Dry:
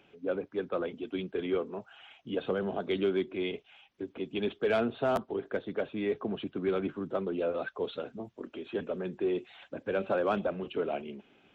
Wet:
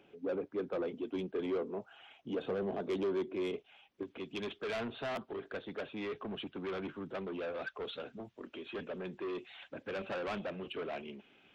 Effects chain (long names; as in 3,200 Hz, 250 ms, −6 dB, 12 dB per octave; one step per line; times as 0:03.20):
soft clipping −31 dBFS, distortion −9 dB
parametric band 390 Hz +6 dB 2.1 octaves, from 0:04.03 2,700 Hz
level −4.5 dB